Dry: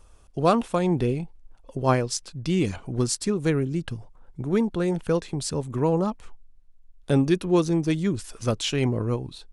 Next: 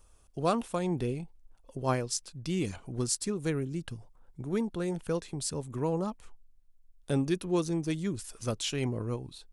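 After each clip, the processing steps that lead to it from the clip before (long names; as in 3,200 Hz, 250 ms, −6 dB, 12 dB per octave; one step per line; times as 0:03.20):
high-shelf EQ 7,700 Hz +11 dB
level −8 dB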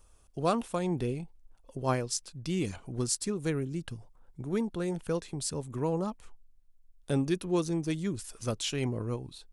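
no processing that can be heard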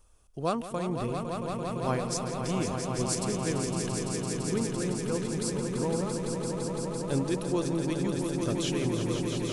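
echo that builds up and dies away 169 ms, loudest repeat 5, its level −7 dB
level −1.5 dB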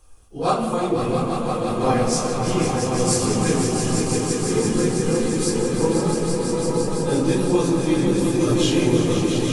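random phases in long frames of 100 ms
convolution reverb RT60 1.2 s, pre-delay 4 ms, DRR 4 dB
level +7.5 dB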